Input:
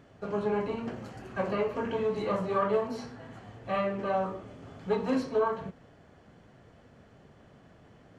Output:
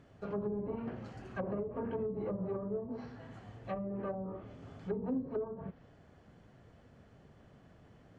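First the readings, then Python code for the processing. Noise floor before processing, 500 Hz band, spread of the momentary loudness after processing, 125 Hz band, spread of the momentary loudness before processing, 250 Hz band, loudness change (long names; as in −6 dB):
−58 dBFS, −8.5 dB, 12 LU, −3.0 dB, 16 LU, −4.5 dB, −8.5 dB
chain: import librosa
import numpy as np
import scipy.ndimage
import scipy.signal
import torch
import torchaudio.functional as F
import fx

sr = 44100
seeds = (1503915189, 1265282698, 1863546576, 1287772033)

y = fx.env_lowpass_down(x, sr, base_hz=360.0, full_db=-25.0)
y = 10.0 ** (-20.0 / 20.0) * np.tanh(y / 10.0 ** (-20.0 / 20.0))
y = fx.low_shelf(y, sr, hz=160.0, db=5.5)
y = y * 10.0 ** (-5.5 / 20.0)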